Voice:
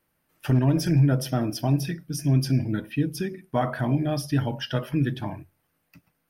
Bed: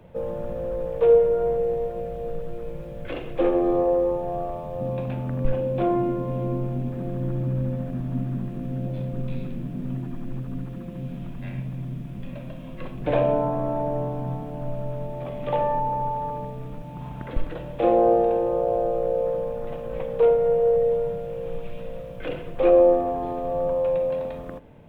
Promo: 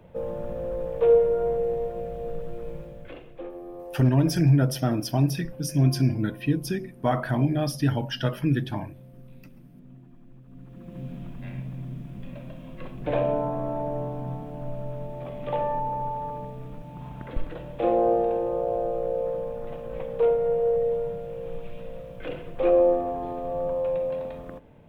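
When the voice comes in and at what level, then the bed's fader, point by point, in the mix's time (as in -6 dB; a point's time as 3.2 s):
3.50 s, +0.5 dB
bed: 2.76 s -2 dB
3.53 s -18.5 dB
10.42 s -18.5 dB
10.98 s -3.5 dB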